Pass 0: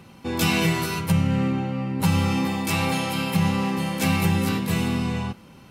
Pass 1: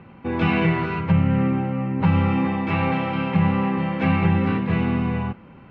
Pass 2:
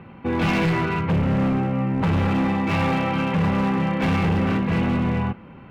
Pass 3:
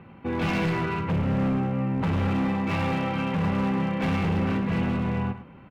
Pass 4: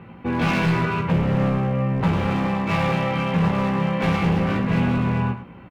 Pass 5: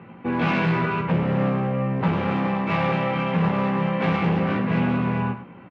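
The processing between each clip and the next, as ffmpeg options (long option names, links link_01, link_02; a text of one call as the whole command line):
ffmpeg -i in.wav -af "lowpass=frequency=2400:width=0.5412,lowpass=frequency=2400:width=1.3066,volume=2.5dB" out.wav
ffmpeg -i in.wav -af "asoftclip=type=hard:threshold=-20dB,volume=2.5dB" out.wav
ffmpeg -i in.wav -af "aecho=1:1:107:0.251,volume=-5dB" out.wav
ffmpeg -i in.wav -filter_complex "[0:a]asplit=2[link_01][link_02];[link_02]adelay=17,volume=-4dB[link_03];[link_01][link_03]amix=inputs=2:normalize=0,volume=4dB" out.wav
ffmpeg -i in.wav -af "highpass=140,lowpass=3200" out.wav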